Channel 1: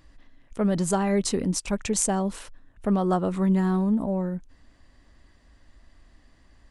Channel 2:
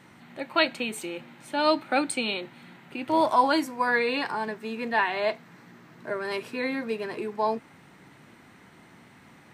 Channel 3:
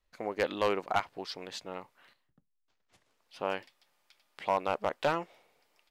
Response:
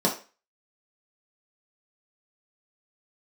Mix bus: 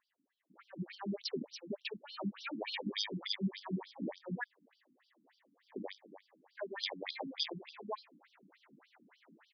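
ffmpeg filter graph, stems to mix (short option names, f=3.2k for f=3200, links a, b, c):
-filter_complex "[0:a]lowshelf=f=78:g=-10,volume=-1.5dB,afade=t=in:st=0.73:d=0.43:silence=0.266073,asplit=2[a][b];[1:a]adelay=500,volume=-4dB,asplit=3[c][d][e];[c]atrim=end=4.44,asetpts=PTS-STARTPTS,afade=t=out:st=4.436:d=0.004:c=hsin[f];[d]atrim=start=4.44:end=6.55,asetpts=PTS-STARTPTS,volume=0[g];[e]atrim=start=6.55,asetpts=PTS-STARTPTS,afade=t=in:d=0.004:c=hsin[h];[f][g][h]concat=n=3:v=0:a=1[i];[2:a]lowpass=f=1.1k:p=1,acrusher=samples=32:mix=1:aa=0.000001,acontrast=78,adelay=2350,volume=2dB,asplit=2[j][k];[k]volume=-22dB[l];[b]apad=whole_len=442383[m];[i][m]sidechaincompress=threshold=-34dB:ratio=6:attack=22:release=291[n];[l]aecho=0:1:279|558|837:1|0.18|0.0324[o];[a][n][j][o]amix=inputs=4:normalize=0,acrossover=split=160|3000[p][q][r];[q]acompressor=threshold=-32dB:ratio=10[s];[p][s][r]amix=inputs=3:normalize=0,afftfilt=real='re*between(b*sr/1024,220*pow(4300/220,0.5+0.5*sin(2*PI*3.4*pts/sr))/1.41,220*pow(4300/220,0.5+0.5*sin(2*PI*3.4*pts/sr))*1.41)':imag='im*between(b*sr/1024,220*pow(4300/220,0.5+0.5*sin(2*PI*3.4*pts/sr))/1.41,220*pow(4300/220,0.5+0.5*sin(2*PI*3.4*pts/sr))*1.41)':win_size=1024:overlap=0.75"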